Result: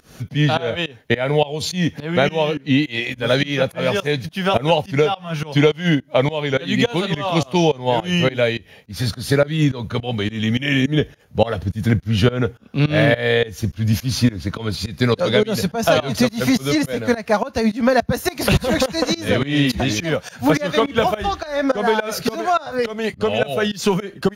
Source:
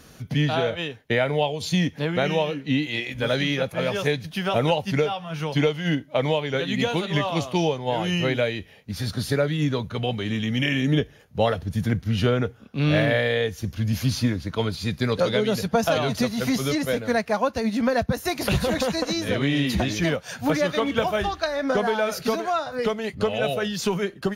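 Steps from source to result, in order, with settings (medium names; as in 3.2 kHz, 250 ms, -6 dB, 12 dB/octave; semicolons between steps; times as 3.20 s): volume shaper 105 bpm, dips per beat 2, -23 dB, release 216 ms; trim +7 dB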